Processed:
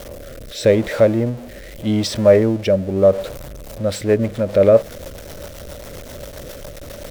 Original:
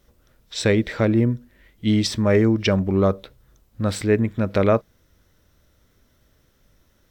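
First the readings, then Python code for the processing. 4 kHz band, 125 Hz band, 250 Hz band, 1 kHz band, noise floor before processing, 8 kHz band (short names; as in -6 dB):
0.0 dB, -0.5 dB, 0.0 dB, -0.5 dB, -62 dBFS, +2.0 dB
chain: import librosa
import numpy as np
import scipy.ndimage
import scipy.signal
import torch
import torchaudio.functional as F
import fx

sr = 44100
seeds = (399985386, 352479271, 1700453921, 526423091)

y = x + 0.5 * 10.0 ** (-27.0 / 20.0) * np.sign(x)
y = fx.peak_eq(y, sr, hz=570.0, db=14.5, octaves=0.5)
y = fx.rotary_switch(y, sr, hz=0.8, then_hz=7.5, switch_at_s=3.25)
y = y * 10.0 ** (-1.0 / 20.0)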